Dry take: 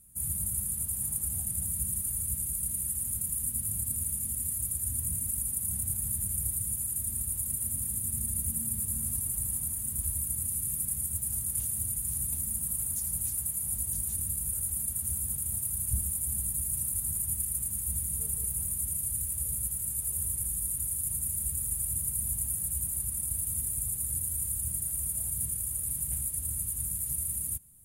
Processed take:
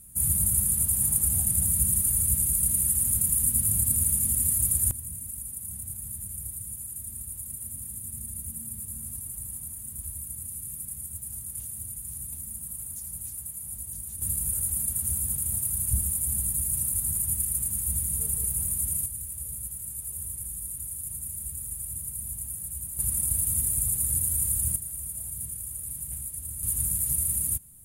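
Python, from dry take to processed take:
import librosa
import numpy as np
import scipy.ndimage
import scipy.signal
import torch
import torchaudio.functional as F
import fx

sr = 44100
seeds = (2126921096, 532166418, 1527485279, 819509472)

y = fx.gain(x, sr, db=fx.steps((0.0, 8.0), (4.91, -5.0), (14.22, 4.0), (19.06, -3.5), (22.99, 6.0), (24.76, -3.0), (26.63, 6.0)))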